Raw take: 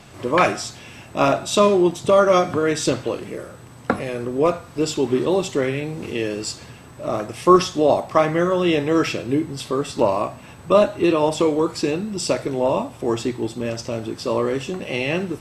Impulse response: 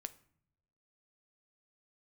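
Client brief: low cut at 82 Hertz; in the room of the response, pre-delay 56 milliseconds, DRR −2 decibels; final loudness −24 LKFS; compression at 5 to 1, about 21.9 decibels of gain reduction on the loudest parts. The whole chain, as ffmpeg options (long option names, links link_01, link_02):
-filter_complex "[0:a]highpass=82,acompressor=threshold=-33dB:ratio=5,asplit=2[link_01][link_02];[1:a]atrim=start_sample=2205,adelay=56[link_03];[link_02][link_03]afir=irnorm=-1:irlink=0,volume=5.5dB[link_04];[link_01][link_04]amix=inputs=2:normalize=0,volume=8dB"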